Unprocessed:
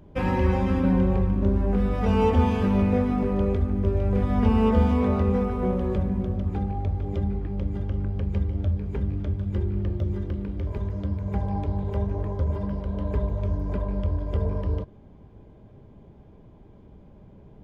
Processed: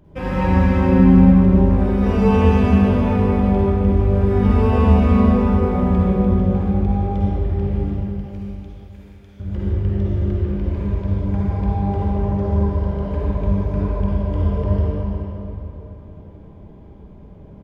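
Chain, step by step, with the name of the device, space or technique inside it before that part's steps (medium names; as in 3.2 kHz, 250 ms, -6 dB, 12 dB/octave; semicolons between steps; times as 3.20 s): 7.84–9.40 s: differentiator; cave (delay 340 ms -12.5 dB; reverberation RT60 3.5 s, pre-delay 44 ms, DRR -8 dB); trim -2 dB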